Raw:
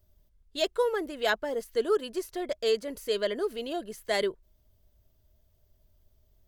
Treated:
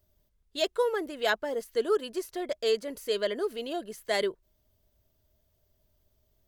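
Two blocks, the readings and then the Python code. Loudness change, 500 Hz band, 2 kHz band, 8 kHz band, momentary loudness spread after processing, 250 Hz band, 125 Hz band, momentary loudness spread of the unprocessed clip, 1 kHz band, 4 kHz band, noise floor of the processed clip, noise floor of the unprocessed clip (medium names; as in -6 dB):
0.0 dB, -0.5 dB, 0.0 dB, 0.0 dB, 7 LU, -1.0 dB, no reading, 7 LU, 0.0 dB, 0.0 dB, -73 dBFS, -68 dBFS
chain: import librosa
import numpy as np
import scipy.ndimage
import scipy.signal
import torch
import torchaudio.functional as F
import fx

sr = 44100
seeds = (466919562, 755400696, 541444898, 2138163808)

y = fx.low_shelf(x, sr, hz=87.0, db=-9.5)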